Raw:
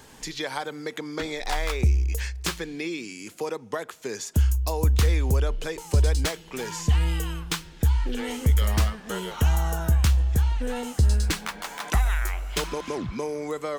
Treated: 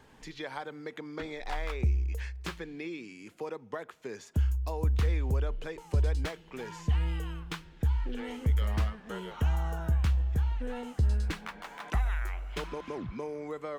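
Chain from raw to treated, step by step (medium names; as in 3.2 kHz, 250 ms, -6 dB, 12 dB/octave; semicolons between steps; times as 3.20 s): tone controls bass +1 dB, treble -12 dB; trim -7.5 dB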